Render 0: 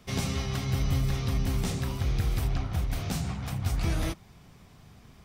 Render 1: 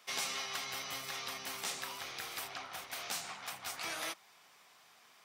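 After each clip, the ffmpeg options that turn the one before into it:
ffmpeg -i in.wav -af "highpass=880" out.wav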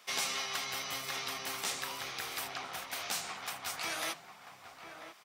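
ffmpeg -i in.wav -filter_complex "[0:a]asplit=2[link_01][link_02];[link_02]adelay=991.3,volume=-8dB,highshelf=frequency=4000:gain=-22.3[link_03];[link_01][link_03]amix=inputs=2:normalize=0,volume=3dB" out.wav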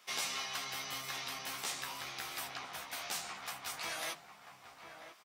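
ffmpeg -i in.wav -filter_complex "[0:a]asplit=2[link_01][link_02];[link_02]adelay=14,volume=-5.5dB[link_03];[link_01][link_03]amix=inputs=2:normalize=0,volume=-4dB" out.wav

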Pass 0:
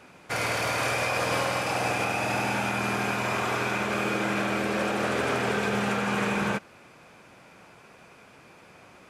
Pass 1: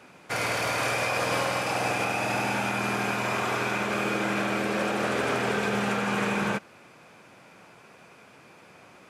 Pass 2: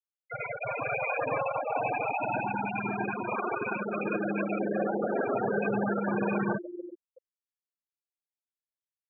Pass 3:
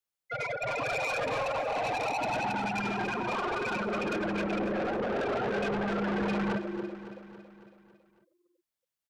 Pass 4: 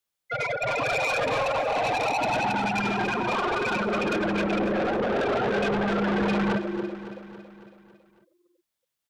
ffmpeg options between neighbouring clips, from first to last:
ffmpeg -i in.wav -af "highpass=95" out.wav
ffmpeg -i in.wav -filter_complex "[0:a]acompressor=mode=upward:threshold=-33dB:ratio=2.5,asplit=7[link_01][link_02][link_03][link_04][link_05][link_06][link_07];[link_02]adelay=372,afreqshift=150,volume=-6.5dB[link_08];[link_03]adelay=744,afreqshift=300,volume=-12.2dB[link_09];[link_04]adelay=1116,afreqshift=450,volume=-17.9dB[link_10];[link_05]adelay=1488,afreqshift=600,volume=-23.5dB[link_11];[link_06]adelay=1860,afreqshift=750,volume=-29.2dB[link_12];[link_07]adelay=2232,afreqshift=900,volume=-34.9dB[link_13];[link_01][link_08][link_09][link_10][link_11][link_12][link_13]amix=inputs=7:normalize=0,afftfilt=real='re*gte(hypot(re,im),0.141)':imag='im*gte(hypot(re,im),0.141)':win_size=1024:overlap=0.75" out.wav
ffmpeg -i in.wav -af "acontrast=33,asoftclip=type=tanh:threshold=-28.5dB,aecho=1:1:277|554|831|1108|1385|1662:0.251|0.143|0.0816|0.0465|0.0265|0.0151" out.wav
ffmpeg -i in.wav -af "equalizer=frequency=3500:width_type=o:width=0.37:gain=2.5,volume=5.5dB" out.wav

